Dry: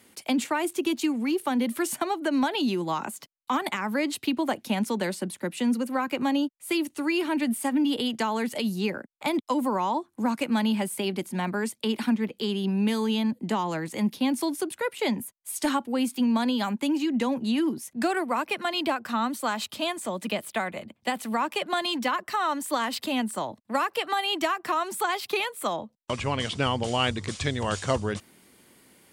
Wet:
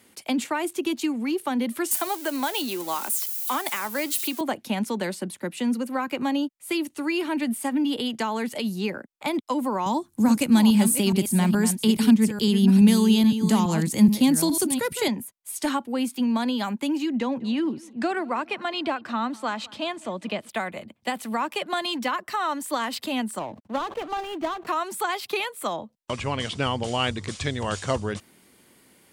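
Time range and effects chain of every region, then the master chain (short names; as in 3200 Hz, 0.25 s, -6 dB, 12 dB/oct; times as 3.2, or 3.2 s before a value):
1.91–4.41 switching spikes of -28.5 dBFS + HPF 340 Hz + high shelf 8200 Hz +8.5 dB
9.86–15.08 reverse delay 0.422 s, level -9 dB + tone controls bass +14 dB, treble +13 dB
17.17–20.49 air absorption 79 m + darkening echo 0.204 s, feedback 43%, low-pass 3600 Hz, level -23 dB
23.39–24.67 median filter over 25 samples + high shelf 8400 Hz -9 dB + sustainer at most 120 dB/s
whole clip: dry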